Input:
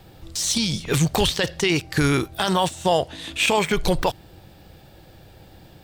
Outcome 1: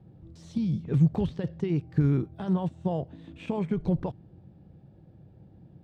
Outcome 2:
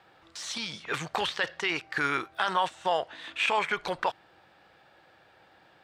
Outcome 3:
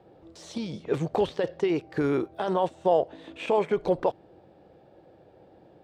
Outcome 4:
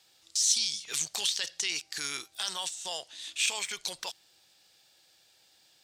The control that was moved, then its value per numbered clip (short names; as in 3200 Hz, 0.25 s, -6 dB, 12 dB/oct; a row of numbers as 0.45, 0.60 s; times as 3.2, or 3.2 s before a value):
band-pass, frequency: 160, 1400, 480, 6300 Hz